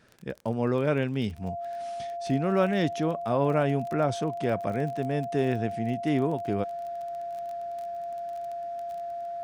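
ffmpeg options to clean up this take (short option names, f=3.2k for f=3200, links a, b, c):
-af "adeclick=t=4,bandreject=f=690:w=30"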